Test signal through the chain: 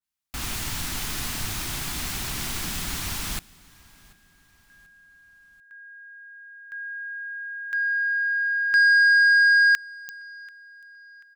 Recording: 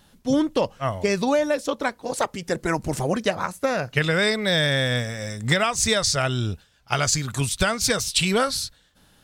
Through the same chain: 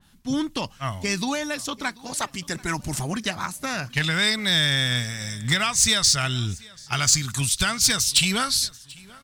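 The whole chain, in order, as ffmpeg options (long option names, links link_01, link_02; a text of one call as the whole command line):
ffmpeg -i in.wav -af "equalizer=frequency=510:width=1.6:gain=-14,asoftclip=type=tanh:threshold=-13.5dB,aecho=1:1:737|1474|2211:0.0708|0.0319|0.0143,adynamicequalizer=threshold=0.0126:dfrequency=2400:dqfactor=0.7:tfrequency=2400:tqfactor=0.7:attack=5:release=100:ratio=0.375:range=3:mode=boostabove:tftype=highshelf" out.wav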